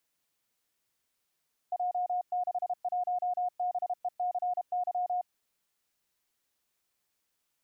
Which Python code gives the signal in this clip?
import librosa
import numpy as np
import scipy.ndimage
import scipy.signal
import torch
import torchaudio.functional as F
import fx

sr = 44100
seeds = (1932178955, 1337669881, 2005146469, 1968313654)

y = fx.morse(sr, text='J61BECY', wpm=32, hz=721.0, level_db=-27.5)